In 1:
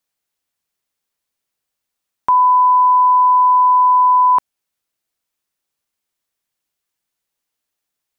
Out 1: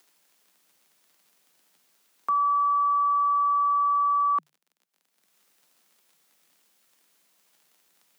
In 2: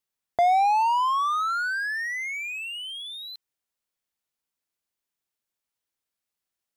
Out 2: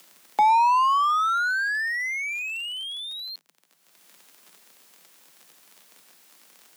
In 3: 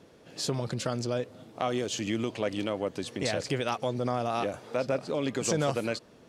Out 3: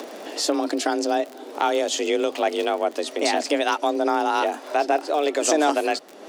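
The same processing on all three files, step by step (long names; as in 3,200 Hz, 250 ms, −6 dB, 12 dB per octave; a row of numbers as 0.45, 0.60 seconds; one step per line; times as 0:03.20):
upward compression, threshold −34 dBFS
surface crackle 42 per second −37 dBFS
frequency shifter +150 Hz
loudness normalisation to −23 LKFS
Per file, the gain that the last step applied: −11.5, +1.5, +8.0 decibels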